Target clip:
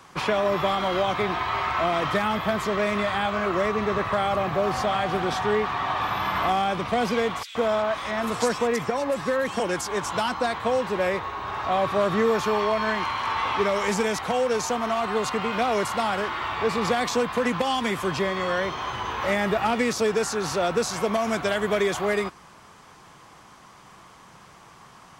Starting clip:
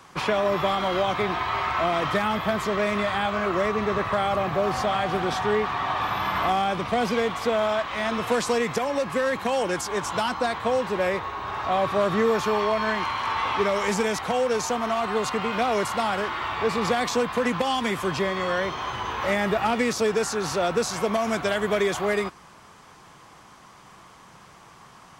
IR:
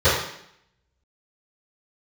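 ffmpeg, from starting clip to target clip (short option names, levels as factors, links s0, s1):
-filter_complex "[0:a]asettb=1/sr,asplit=3[s0][s1][s2];[s0]atrim=end=7.434[s3];[s1]atrim=start=7.43:end=9.6,asetpts=PTS-STARTPTS,afade=t=in:d=0.004:c=qsin,afade=t=out:st=2.166:d=0.004:c=qsin,acrossover=split=2700[s4][s5];[s4]adelay=120[s6];[s6][s5]amix=inputs=2:normalize=0,atrim=end_sample=95697[s7];[s2]atrim=start=9.596[s8];[s3][s7]acrossfade=d=0.004:c1=hsin:c2=qsin[s9];[s9][s8]acrossfade=d=0.004:c1=qsin:c2=hsin"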